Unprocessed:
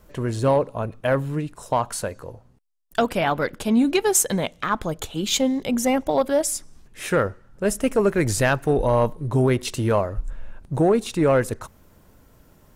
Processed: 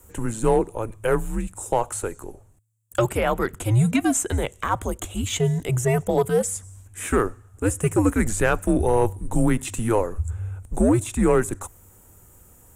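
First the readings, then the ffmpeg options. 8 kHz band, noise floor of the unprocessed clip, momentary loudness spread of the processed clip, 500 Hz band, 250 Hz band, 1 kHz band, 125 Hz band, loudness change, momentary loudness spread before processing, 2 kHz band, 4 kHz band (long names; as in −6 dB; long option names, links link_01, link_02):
−2.0 dB, −54 dBFS, 10 LU, −1.5 dB, −0.5 dB, −1.5 dB, +2.0 dB, −1.0 dB, 10 LU, −2.0 dB, −6.5 dB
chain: -filter_complex "[0:a]afreqshift=-110,acrossover=split=4000[link_01][link_02];[link_02]acompressor=threshold=-43dB:ratio=4:attack=1:release=60[link_03];[link_01][link_03]amix=inputs=2:normalize=0,highshelf=frequency=6100:width_type=q:width=3:gain=9"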